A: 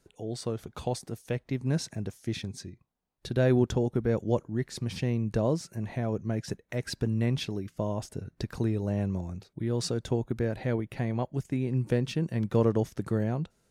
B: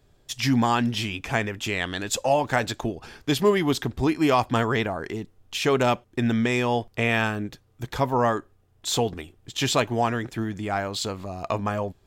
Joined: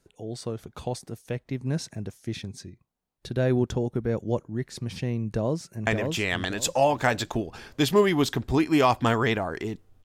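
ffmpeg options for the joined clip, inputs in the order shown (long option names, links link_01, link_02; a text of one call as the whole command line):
ffmpeg -i cue0.wav -i cue1.wav -filter_complex "[0:a]apad=whole_dur=10.04,atrim=end=10.04,atrim=end=5.872[link_01];[1:a]atrim=start=1.358:end=5.53[link_02];[link_01][link_02]acrossfade=duration=0.004:curve1=hsin:curve2=hsin,asplit=2[link_03][link_04];[link_04]afade=type=in:start_time=5.28:duration=0.01,afade=type=out:start_time=5.87:duration=0.01,aecho=0:1:570|1140|1710|2280:0.668344|0.167086|0.0417715|0.0104429[link_05];[link_03][link_05]amix=inputs=2:normalize=0" out.wav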